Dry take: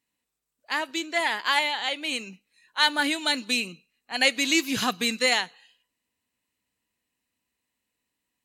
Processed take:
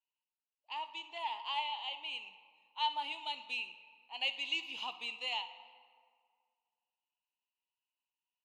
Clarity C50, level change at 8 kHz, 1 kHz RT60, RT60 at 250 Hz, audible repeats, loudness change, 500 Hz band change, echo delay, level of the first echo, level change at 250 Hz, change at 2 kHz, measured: 11.5 dB, -29.0 dB, 2.0 s, 2.0 s, 1, -13.5 dB, -22.0 dB, 62 ms, -18.0 dB, -30.5 dB, -16.0 dB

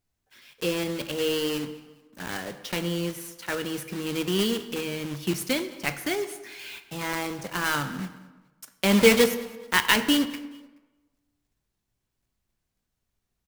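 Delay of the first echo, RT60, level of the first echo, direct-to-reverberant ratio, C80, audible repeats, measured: 213 ms, 1.2 s, -22.0 dB, 9.0 dB, 13.0 dB, 2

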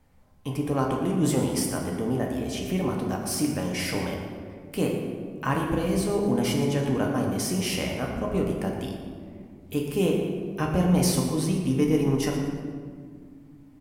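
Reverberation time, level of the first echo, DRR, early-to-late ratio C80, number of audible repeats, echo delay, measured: 2.0 s, -11.5 dB, -1.0 dB, 4.0 dB, 1, 117 ms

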